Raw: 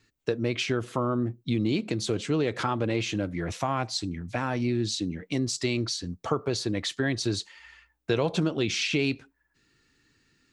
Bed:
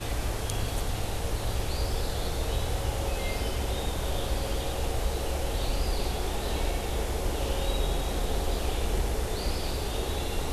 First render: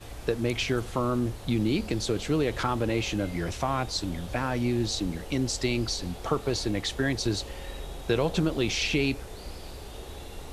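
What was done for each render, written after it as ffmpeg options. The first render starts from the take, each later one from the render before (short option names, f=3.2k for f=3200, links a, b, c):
-filter_complex "[1:a]volume=-10.5dB[a];[0:a][a]amix=inputs=2:normalize=0"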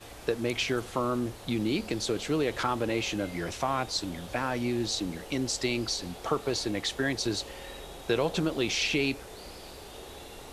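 -af "lowshelf=f=140:g=-12"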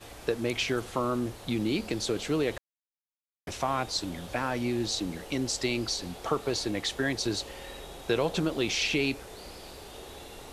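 -filter_complex "[0:a]asplit=3[a][b][c];[a]atrim=end=2.58,asetpts=PTS-STARTPTS,afade=t=out:st=2.576:d=0.004:c=hsin[d];[b]atrim=start=2.58:end=3.47,asetpts=PTS-STARTPTS,volume=0[e];[c]atrim=start=3.47,asetpts=PTS-STARTPTS,afade=t=in:d=0.004:c=hsin[f];[d][e][f]concat=n=3:v=0:a=1"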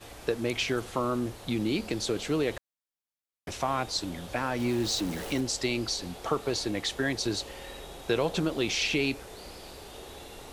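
-filter_complex "[0:a]asettb=1/sr,asplit=3[a][b][c];[a]atrim=end=4.594[d];[b]atrim=start=4.59:end=5.41,asetpts=PTS-STARTPTS,afade=t=in:d=0.004:c=qsin,afade=t=out:st=0.816:d=0.004:c=qsin,aeval=exprs='val(0)+0.5*0.0158*sgn(val(0))':c=same[e];[c]atrim=start=5.406[f];[d][e]acrossfade=d=0.004:c1=hsin:c2=qsin[g];[g][f]acrossfade=d=0.004:c1=qsin:c2=hsin"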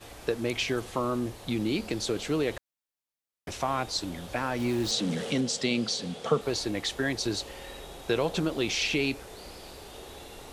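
-filter_complex "[0:a]asettb=1/sr,asplit=3[a][b][c];[a]atrim=end=0.584[d];[b]atrim=start=0.58:end=1.46,asetpts=PTS-STARTPTS,afade=t=in:d=0.004:c=qsin,afade=t=out:st=0.876:d=0.004:c=qsin,bandreject=f=1.4k:w=12[e];[c]atrim=start=1.456[f];[d][e]acrossfade=d=0.004:c1=hsin:c2=qsin[g];[g][f]acrossfade=d=0.004:c1=qsin:c2=hsin,asettb=1/sr,asplit=3[h][i][j];[h]atrim=end=4.914[k];[i]atrim=start=4.91:end=6.41,asetpts=PTS-STARTPTS,afade=t=in:d=0.004:c=qsin,afade=t=out:st=1.496:d=0.004:c=qsin,highpass=130,equalizer=f=150:t=q:w=4:g=9,equalizer=f=220:t=q:w=4:g=10,equalizer=f=330:t=q:w=4:g=-7,equalizer=f=480:t=q:w=4:g=8,equalizer=f=920:t=q:w=4:g=-4,equalizer=f=3.3k:t=q:w=4:g=6,lowpass=f=9.8k:w=0.5412,lowpass=f=9.8k:w=1.3066[l];[j]atrim=start=6.406[m];[k][l]acrossfade=d=0.004:c1=hsin:c2=qsin[n];[n][m]acrossfade=d=0.004:c1=qsin:c2=hsin"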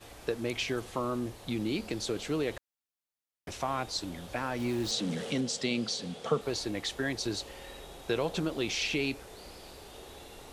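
-af "volume=-3.5dB"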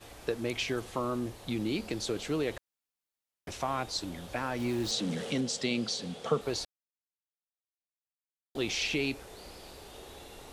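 -filter_complex "[0:a]asplit=3[a][b][c];[a]atrim=end=6.65,asetpts=PTS-STARTPTS,afade=t=out:st=6.646:d=0.004:c=hsin[d];[b]atrim=start=6.65:end=8.55,asetpts=PTS-STARTPTS,volume=0[e];[c]atrim=start=8.55,asetpts=PTS-STARTPTS,afade=t=in:d=0.004:c=hsin[f];[d][e][f]concat=n=3:v=0:a=1"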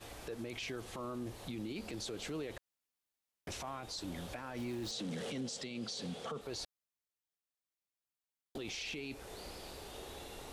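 -af "acompressor=threshold=-37dB:ratio=2.5,alimiter=level_in=9.5dB:limit=-24dB:level=0:latency=1:release=11,volume=-9.5dB"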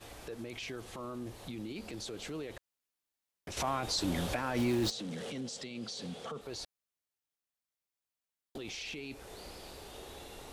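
-filter_complex "[0:a]asplit=3[a][b][c];[a]atrim=end=3.572[d];[b]atrim=start=3.568:end=4.902,asetpts=PTS-STARTPTS,volume=10dB[e];[c]atrim=start=4.898[f];[d][e]acrossfade=d=0.004:c1=hsin:c2=hsin[g];[g][f]acrossfade=d=0.004:c1=hsin:c2=hsin"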